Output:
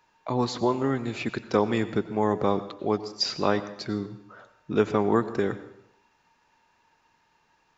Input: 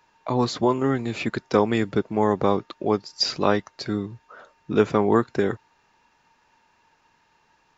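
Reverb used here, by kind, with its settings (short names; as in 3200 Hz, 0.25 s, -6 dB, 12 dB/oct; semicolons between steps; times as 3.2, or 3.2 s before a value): plate-style reverb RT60 0.74 s, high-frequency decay 0.9×, pre-delay 80 ms, DRR 13.5 dB; gain -3.5 dB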